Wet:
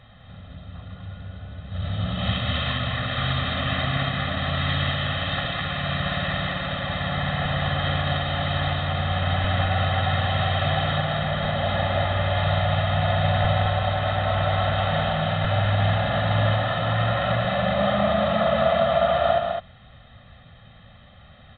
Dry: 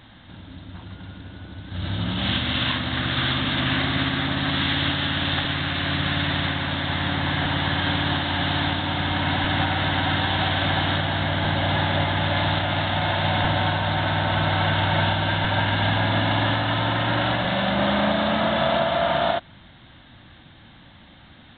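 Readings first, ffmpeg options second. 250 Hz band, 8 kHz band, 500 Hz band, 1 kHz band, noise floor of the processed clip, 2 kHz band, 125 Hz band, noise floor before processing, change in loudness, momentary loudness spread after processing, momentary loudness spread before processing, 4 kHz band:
-4.0 dB, no reading, +2.5 dB, -0.5 dB, -49 dBFS, -3.5 dB, +1.5 dB, -49 dBFS, -1.0 dB, 6 LU, 4 LU, -4.0 dB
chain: -filter_complex "[0:a]highshelf=f=3400:g=-9,aecho=1:1:1.6:0.92,asplit=2[s0][s1];[s1]aecho=0:1:207:0.596[s2];[s0][s2]amix=inputs=2:normalize=0,volume=0.668"

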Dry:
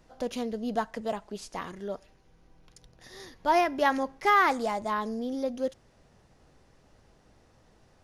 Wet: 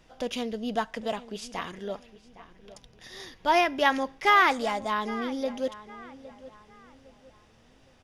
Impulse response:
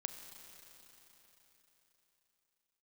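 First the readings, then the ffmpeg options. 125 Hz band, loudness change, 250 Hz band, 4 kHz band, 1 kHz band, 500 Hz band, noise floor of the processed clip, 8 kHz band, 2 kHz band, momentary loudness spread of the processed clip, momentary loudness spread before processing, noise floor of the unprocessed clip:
no reading, +2.0 dB, 0.0 dB, +7.0 dB, +1.0 dB, +0.5 dB, -59 dBFS, +2.0 dB, +4.0 dB, 22 LU, 16 LU, -62 dBFS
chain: -filter_complex "[0:a]equalizer=f=3100:w=0.95:g=8.5,bandreject=f=4200:w=11,asplit=2[s0][s1];[s1]adelay=811,lowpass=f=2900:p=1,volume=0.15,asplit=2[s2][s3];[s3]adelay=811,lowpass=f=2900:p=1,volume=0.37,asplit=2[s4][s5];[s5]adelay=811,lowpass=f=2900:p=1,volume=0.37[s6];[s0][s2][s4][s6]amix=inputs=4:normalize=0"

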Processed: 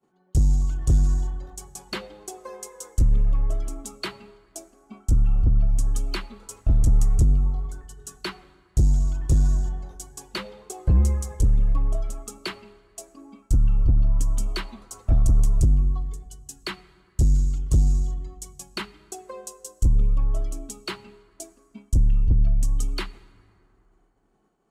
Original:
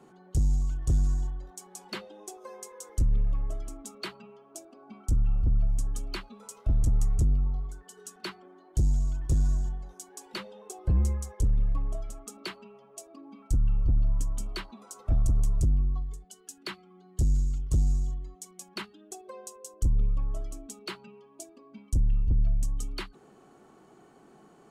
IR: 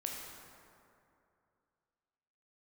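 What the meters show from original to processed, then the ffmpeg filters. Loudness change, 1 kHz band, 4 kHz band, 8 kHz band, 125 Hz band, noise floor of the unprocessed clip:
+6.0 dB, +5.5 dB, +6.0 dB, +5.5 dB, +6.0 dB, -57 dBFS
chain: -filter_complex "[0:a]agate=range=0.0224:threshold=0.00708:ratio=3:detection=peak,asplit=2[s0][s1];[1:a]atrim=start_sample=2205[s2];[s1][s2]afir=irnorm=-1:irlink=0,volume=0.168[s3];[s0][s3]amix=inputs=2:normalize=0,volume=1.78"

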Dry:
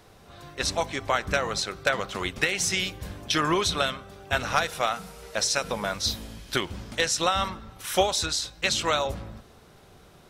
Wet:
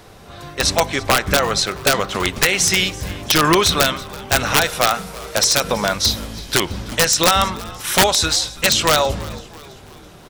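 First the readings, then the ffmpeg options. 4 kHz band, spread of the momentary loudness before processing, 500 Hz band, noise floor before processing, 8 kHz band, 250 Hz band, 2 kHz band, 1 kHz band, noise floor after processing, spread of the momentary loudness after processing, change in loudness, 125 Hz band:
+10.5 dB, 10 LU, +8.5 dB, -53 dBFS, +11.5 dB, +10.0 dB, +8.5 dB, +8.5 dB, -42 dBFS, 11 LU, +10.0 dB, +10.5 dB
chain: -filter_complex "[0:a]acontrast=39,aeval=exprs='(mod(2.99*val(0)+1,2)-1)/2.99':c=same,asplit=5[s0][s1][s2][s3][s4];[s1]adelay=331,afreqshift=-81,volume=0.1[s5];[s2]adelay=662,afreqshift=-162,volume=0.0501[s6];[s3]adelay=993,afreqshift=-243,volume=0.0251[s7];[s4]adelay=1324,afreqshift=-324,volume=0.0124[s8];[s0][s5][s6][s7][s8]amix=inputs=5:normalize=0,volume=1.68"

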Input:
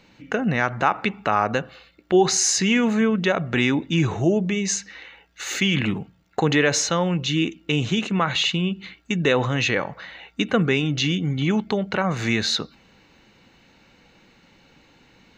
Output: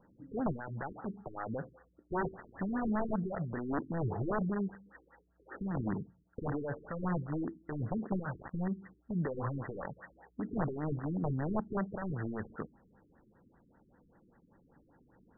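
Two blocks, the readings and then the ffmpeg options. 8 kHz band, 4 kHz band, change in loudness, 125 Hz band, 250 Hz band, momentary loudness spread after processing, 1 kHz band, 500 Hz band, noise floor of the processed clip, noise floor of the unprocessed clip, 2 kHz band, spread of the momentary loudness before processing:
under -40 dB, under -40 dB, -15.5 dB, -12.0 dB, -13.5 dB, 9 LU, -14.5 dB, -15.5 dB, -69 dBFS, -57 dBFS, -21.5 dB, 10 LU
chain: -af "alimiter=limit=0.158:level=0:latency=1:release=39,aeval=exprs='(mod(7.5*val(0)+1,2)-1)/7.5':c=same,afftfilt=real='re*lt(b*sr/1024,420*pow(2000/420,0.5+0.5*sin(2*PI*5.1*pts/sr)))':imag='im*lt(b*sr/1024,420*pow(2000/420,0.5+0.5*sin(2*PI*5.1*pts/sr)))':win_size=1024:overlap=0.75,volume=0.398"

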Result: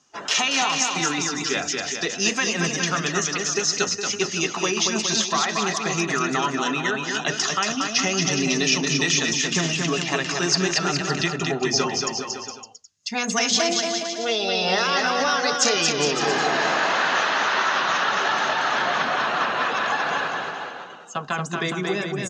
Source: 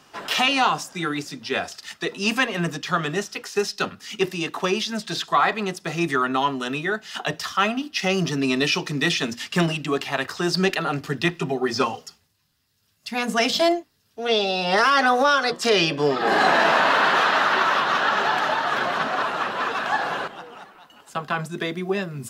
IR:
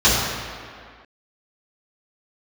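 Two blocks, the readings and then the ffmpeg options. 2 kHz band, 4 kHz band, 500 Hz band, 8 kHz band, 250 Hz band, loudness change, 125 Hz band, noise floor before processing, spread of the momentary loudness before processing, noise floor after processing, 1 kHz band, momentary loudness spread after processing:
0.0 dB, +3.0 dB, -2.0 dB, +12.5 dB, -1.0 dB, +0.5 dB, -0.5 dB, -65 dBFS, 10 LU, -38 dBFS, -2.0 dB, 6 LU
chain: -af "afftdn=nr=14:nf=-43,adynamicequalizer=threshold=0.0224:dfrequency=2200:dqfactor=1.7:tfrequency=2200:tqfactor=1.7:attack=5:release=100:ratio=0.375:range=1.5:mode=boostabove:tftype=bell,acompressor=threshold=0.0891:ratio=6,lowpass=f=6500:t=q:w=7.5,aecho=1:1:230|414|561.2|679|773.2:0.631|0.398|0.251|0.158|0.1"

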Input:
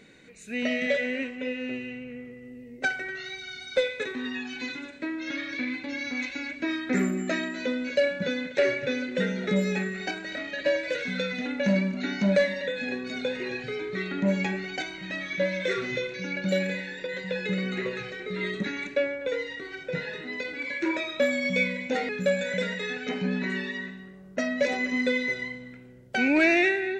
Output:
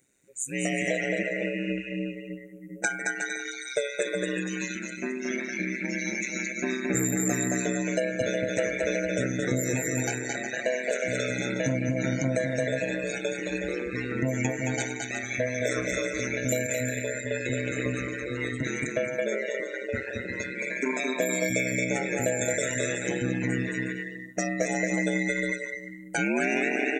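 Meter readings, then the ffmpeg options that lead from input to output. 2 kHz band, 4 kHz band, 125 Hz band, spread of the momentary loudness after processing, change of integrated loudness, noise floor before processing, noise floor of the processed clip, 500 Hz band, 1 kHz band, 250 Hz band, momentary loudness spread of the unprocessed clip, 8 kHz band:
-0.5 dB, -4.0 dB, +3.5 dB, 6 LU, 0.0 dB, -46 dBFS, -40 dBFS, -0.5 dB, 0.0 dB, -1.0 dB, 9 LU, +15.5 dB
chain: -filter_complex "[0:a]bandreject=f=3100:w=20,asplit=2[s0][s1];[s1]aecho=0:1:220|363|456|516.4|555.6:0.631|0.398|0.251|0.158|0.1[s2];[s0][s2]amix=inputs=2:normalize=0,acompressor=threshold=0.0708:ratio=6,aexciter=amount=13.7:drive=5.4:freq=6500,afftdn=nr=19:nf=-35,aeval=exprs='val(0)*sin(2*PI*65*n/s)':c=same,volume=1.41"

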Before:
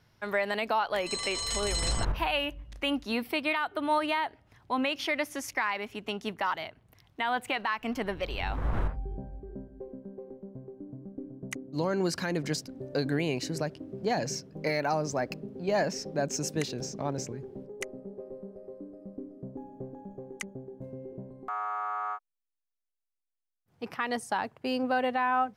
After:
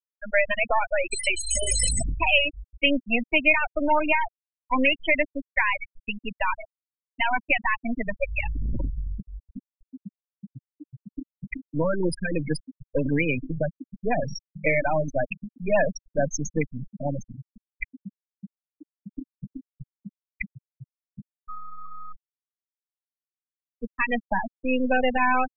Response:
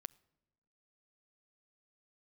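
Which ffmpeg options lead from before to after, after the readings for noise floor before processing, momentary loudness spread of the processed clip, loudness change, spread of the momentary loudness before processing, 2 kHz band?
-85 dBFS, 20 LU, +6.5 dB, 15 LU, +8.5 dB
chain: -filter_complex "[0:a]aeval=exprs='0.133*(cos(1*acos(clip(val(0)/0.133,-1,1)))-cos(1*PI/2))+0.00188*(cos(3*acos(clip(val(0)/0.133,-1,1)))-cos(3*PI/2))+0.0015*(cos(5*acos(clip(val(0)/0.133,-1,1)))-cos(5*PI/2))+0.0237*(cos(6*acos(clip(val(0)/0.133,-1,1)))-cos(6*PI/2))+0.00119*(cos(7*acos(clip(val(0)/0.133,-1,1)))-cos(7*PI/2))':c=same,equalizer=f=100:t=o:w=0.33:g=-4,equalizer=f=400:t=o:w=0.33:g=-9,equalizer=f=800:t=o:w=0.33:g=-6,equalizer=f=1250:t=o:w=0.33:g=-6,equalizer=f=2500:t=o:w=0.33:g=6,equalizer=f=4000:t=o:w=0.33:g=-7,equalizer=f=10000:t=o:w=0.33:g=11,afftfilt=real='re*gte(hypot(re,im),0.0891)':imag='im*gte(hypot(re,im),0.0891)':win_size=1024:overlap=0.75,acrossover=split=260|2000[s0][s1][s2];[s0]asoftclip=type=tanh:threshold=0.0299[s3];[s3][s1][s2]amix=inputs=3:normalize=0,volume=2.66"

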